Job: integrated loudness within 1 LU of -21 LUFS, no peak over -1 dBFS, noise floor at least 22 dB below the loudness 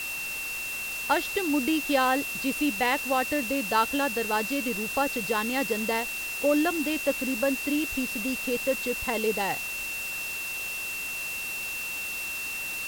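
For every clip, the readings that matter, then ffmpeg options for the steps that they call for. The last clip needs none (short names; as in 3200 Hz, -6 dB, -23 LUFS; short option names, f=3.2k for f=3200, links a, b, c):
steady tone 2700 Hz; tone level -32 dBFS; noise floor -34 dBFS; noise floor target -50 dBFS; loudness -27.5 LUFS; peak -9.5 dBFS; loudness target -21.0 LUFS
-> -af "bandreject=f=2.7k:w=30"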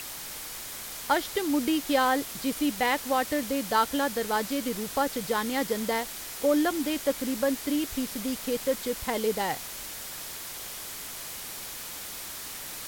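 steady tone none; noise floor -39 dBFS; noise floor target -51 dBFS
-> -af "afftdn=nr=12:nf=-39"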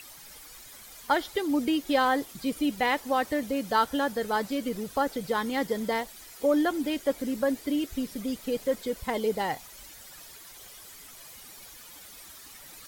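noise floor -48 dBFS; noise floor target -51 dBFS
-> -af "afftdn=nr=6:nf=-48"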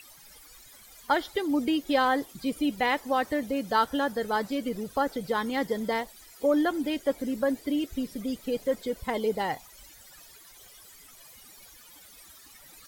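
noise floor -52 dBFS; loudness -28.5 LUFS; peak -10.5 dBFS; loudness target -21.0 LUFS
-> -af "volume=7.5dB"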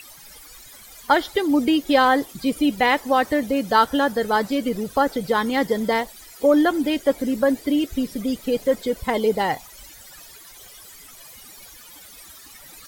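loudness -21.0 LUFS; peak -3.0 dBFS; noise floor -45 dBFS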